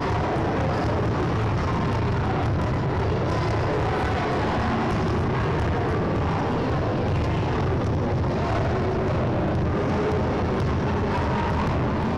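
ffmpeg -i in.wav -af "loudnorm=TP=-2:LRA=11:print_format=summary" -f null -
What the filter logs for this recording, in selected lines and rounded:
Input Integrated:    -24.1 LUFS
Input True Peak:     -20.8 dBTP
Input LRA:             0.2 LU
Input Threshold:     -34.1 LUFS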